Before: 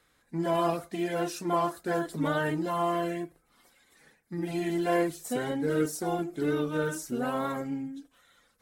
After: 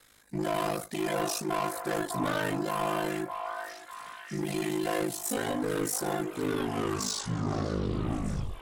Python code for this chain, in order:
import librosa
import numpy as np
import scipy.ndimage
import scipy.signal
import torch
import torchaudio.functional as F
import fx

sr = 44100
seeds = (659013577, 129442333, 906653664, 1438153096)

p1 = fx.tape_stop_end(x, sr, length_s=2.2)
p2 = fx.high_shelf(p1, sr, hz=3500.0, db=9.0)
p3 = fx.rider(p2, sr, range_db=5, speed_s=0.5)
p4 = p2 + F.gain(torch.from_numpy(p3), -2.0).numpy()
p5 = 10.0 ** (-23.5 / 20.0) * np.tanh(p4 / 10.0 ** (-23.5 / 20.0))
p6 = p5 * np.sin(2.0 * np.pi * 26.0 * np.arange(len(p5)) / sr)
y = p6 + fx.echo_stepped(p6, sr, ms=601, hz=910.0, octaves=0.7, feedback_pct=70, wet_db=-4.0, dry=0)